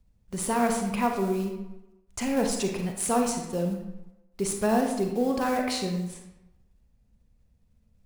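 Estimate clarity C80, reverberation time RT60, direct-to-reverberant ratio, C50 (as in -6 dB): 7.0 dB, 1.0 s, 2.5 dB, 4.5 dB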